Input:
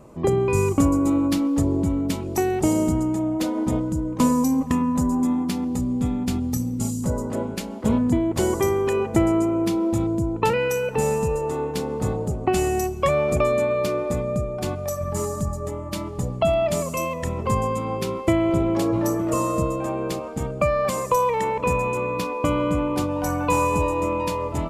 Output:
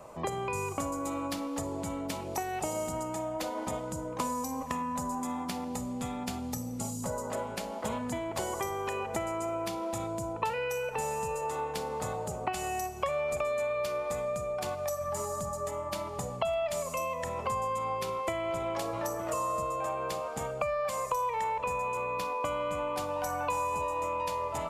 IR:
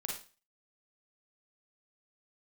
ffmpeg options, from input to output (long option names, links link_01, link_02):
-filter_complex "[0:a]lowshelf=frequency=460:width_type=q:width=1.5:gain=-10,asplit=2[link_01][link_02];[1:a]atrim=start_sample=2205[link_03];[link_02][link_03]afir=irnorm=-1:irlink=0,volume=-10dB[link_04];[link_01][link_04]amix=inputs=2:normalize=0,acrossover=split=93|1200[link_05][link_06][link_07];[link_05]acompressor=threshold=-52dB:ratio=4[link_08];[link_06]acompressor=threshold=-34dB:ratio=4[link_09];[link_07]acompressor=threshold=-40dB:ratio=4[link_10];[link_08][link_09][link_10]amix=inputs=3:normalize=0"